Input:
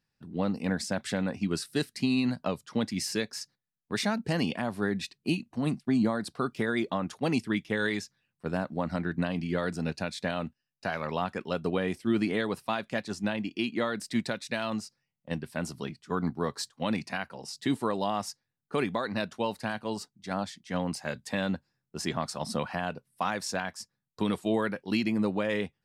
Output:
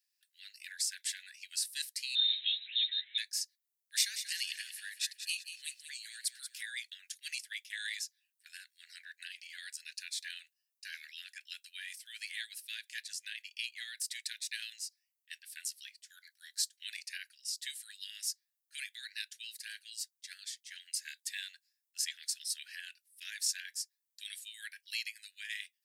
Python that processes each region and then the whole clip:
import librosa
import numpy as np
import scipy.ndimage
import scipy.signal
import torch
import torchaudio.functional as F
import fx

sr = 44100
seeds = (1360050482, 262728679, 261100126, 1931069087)

y = fx.chain(x, sr, fx.zero_step(step_db=-35.5),
    fx.freq_invert(carrier_hz=3900),
    fx.ensemble(), at=(2.15, 3.18))
y = fx.chain(y, sr, fx.tilt_shelf(db=-3.5, hz=1500.0),
    fx.echo_feedback(ms=186, feedback_pct=36, wet_db=-10), at=(3.92, 6.61))
y = scipy.signal.sosfilt(scipy.signal.butter(16, 1600.0, 'highpass', fs=sr, output='sos'), y)
y = np.diff(y, prepend=0.0)
y = y * librosa.db_to_amplitude(5.0)